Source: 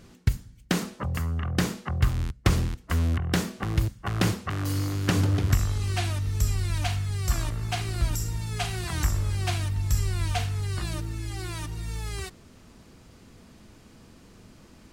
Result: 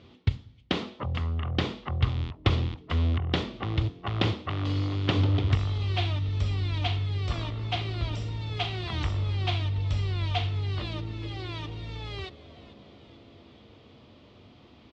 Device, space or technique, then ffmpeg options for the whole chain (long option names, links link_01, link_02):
frequency-shifting delay pedal into a guitar cabinet: -filter_complex "[0:a]asplit=7[link_01][link_02][link_03][link_04][link_05][link_06][link_07];[link_02]adelay=439,afreqshift=-130,volume=-18dB[link_08];[link_03]adelay=878,afreqshift=-260,volume=-22.2dB[link_09];[link_04]adelay=1317,afreqshift=-390,volume=-26.3dB[link_10];[link_05]adelay=1756,afreqshift=-520,volume=-30.5dB[link_11];[link_06]adelay=2195,afreqshift=-650,volume=-34.6dB[link_12];[link_07]adelay=2634,afreqshift=-780,volume=-38.8dB[link_13];[link_01][link_08][link_09][link_10][link_11][link_12][link_13]amix=inputs=7:normalize=0,highpass=86,equalizer=frequency=88:width_type=q:width=4:gain=4,equalizer=frequency=180:width_type=q:width=4:gain=-9,equalizer=frequency=1600:width_type=q:width=4:gain=-9,equalizer=frequency=3400:width_type=q:width=4:gain=7,lowpass=frequency=4000:width=0.5412,lowpass=frequency=4000:width=1.3066"